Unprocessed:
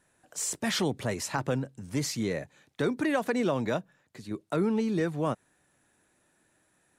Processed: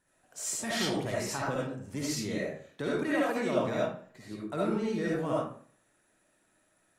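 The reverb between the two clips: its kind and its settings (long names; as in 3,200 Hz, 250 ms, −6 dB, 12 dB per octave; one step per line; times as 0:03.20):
comb and all-pass reverb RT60 0.49 s, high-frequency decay 0.7×, pre-delay 30 ms, DRR −6 dB
level −7.5 dB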